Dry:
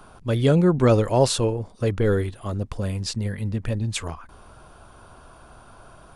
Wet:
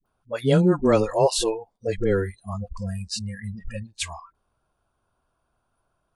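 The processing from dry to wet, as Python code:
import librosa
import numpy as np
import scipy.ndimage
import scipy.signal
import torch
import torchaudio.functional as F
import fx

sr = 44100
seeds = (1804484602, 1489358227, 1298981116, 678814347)

y = fx.dispersion(x, sr, late='highs', ms=58.0, hz=530.0)
y = fx.noise_reduce_blind(y, sr, reduce_db=26)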